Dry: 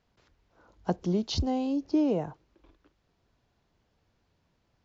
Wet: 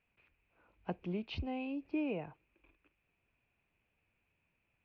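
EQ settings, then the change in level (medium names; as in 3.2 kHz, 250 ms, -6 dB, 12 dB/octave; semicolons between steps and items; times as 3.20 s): four-pole ladder low-pass 2.6 kHz, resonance 85%; +2.0 dB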